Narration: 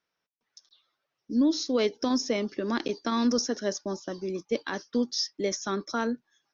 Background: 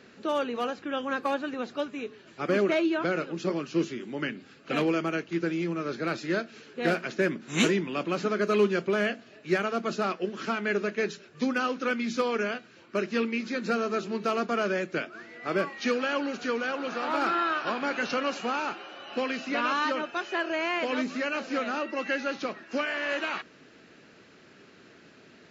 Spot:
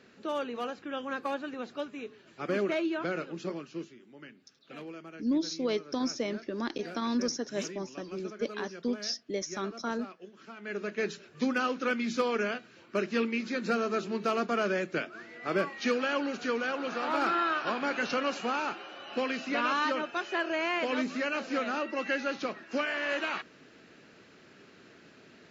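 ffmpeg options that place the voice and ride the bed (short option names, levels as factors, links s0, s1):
-filter_complex "[0:a]adelay=3900,volume=0.562[s0];[1:a]volume=3.55,afade=t=out:st=3.33:d=0.61:silence=0.237137,afade=t=in:st=10.55:d=0.58:silence=0.158489[s1];[s0][s1]amix=inputs=2:normalize=0"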